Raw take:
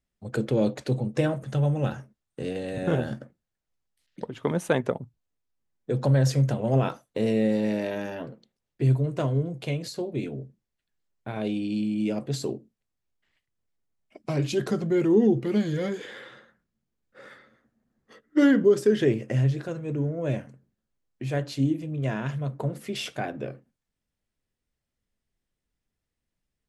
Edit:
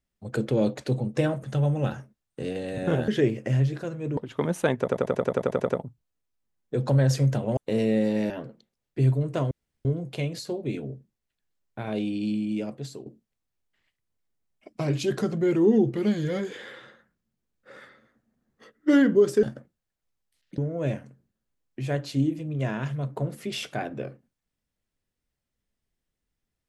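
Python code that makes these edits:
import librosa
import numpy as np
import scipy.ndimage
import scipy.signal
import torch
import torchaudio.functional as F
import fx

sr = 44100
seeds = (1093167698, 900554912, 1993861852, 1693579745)

y = fx.edit(x, sr, fx.swap(start_s=3.08, length_s=1.15, other_s=18.92, other_length_s=1.09),
    fx.stutter(start_s=4.85, slice_s=0.09, count=11),
    fx.cut(start_s=6.73, length_s=0.32),
    fx.cut(start_s=7.78, length_s=0.35),
    fx.insert_room_tone(at_s=9.34, length_s=0.34),
    fx.fade_out_to(start_s=11.83, length_s=0.72, floor_db=-14.0), tone=tone)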